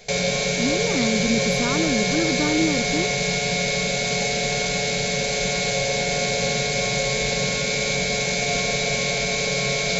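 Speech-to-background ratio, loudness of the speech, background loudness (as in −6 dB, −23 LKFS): −4.5 dB, −26.0 LKFS, −21.5 LKFS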